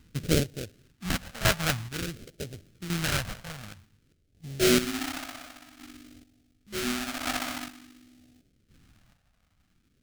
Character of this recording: aliases and images of a low sample rate 1 kHz, jitter 20%; chopped level 0.69 Hz, depth 65%, duty 30%; phasing stages 2, 0.51 Hz, lowest notch 340–1000 Hz

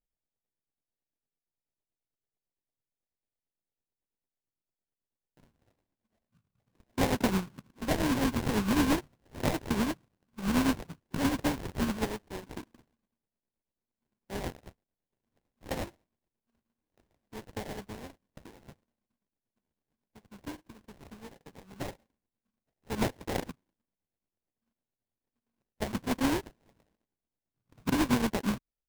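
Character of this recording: a buzz of ramps at a fixed pitch in blocks of 32 samples; tremolo triangle 9 Hz, depth 65%; aliases and images of a low sample rate 1.3 kHz, jitter 20%

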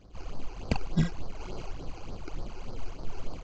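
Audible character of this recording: aliases and images of a low sample rate 1.8 kHz, jitter 0%; phasing stages 12, 3.4 Hz, lowest notch 180–2700 Hz; Vorbis

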